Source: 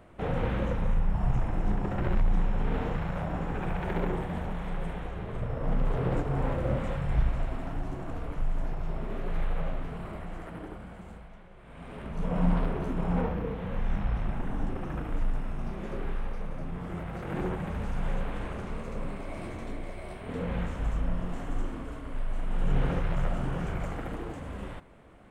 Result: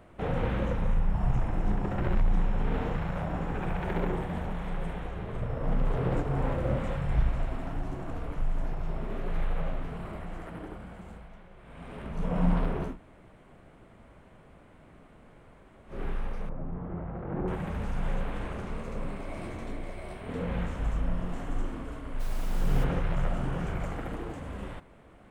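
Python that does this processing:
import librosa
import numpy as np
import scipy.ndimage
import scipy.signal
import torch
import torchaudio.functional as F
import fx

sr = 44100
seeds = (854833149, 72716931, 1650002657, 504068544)

y = fx.lowpass(x, sr, hz=1100.0, slope=12, at=(16.49, 17.48))
y = fx.dmg_noise_colour(y, sr, seeds[0], colour='pink', level_db=-47.0, at=(22.19, 22.83), fade=0.02)
y = fx.edit(y, sr, fx.room_tone_fill(start_s=12.91, length_s=3.03, crossfade_s=0.16), tone=tone)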